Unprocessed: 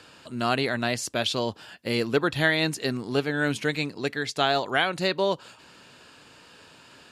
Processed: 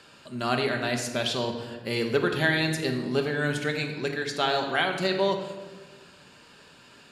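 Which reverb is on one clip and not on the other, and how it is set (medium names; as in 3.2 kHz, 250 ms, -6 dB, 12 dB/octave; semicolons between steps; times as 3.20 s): simulated room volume 1200 m³, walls mixed, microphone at 1.2 m; trim -3 dB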